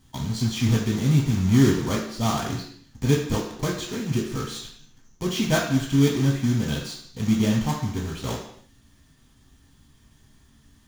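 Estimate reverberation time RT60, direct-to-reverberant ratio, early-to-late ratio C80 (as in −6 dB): non-exponential decay, −3.0 dB, 7.5 dB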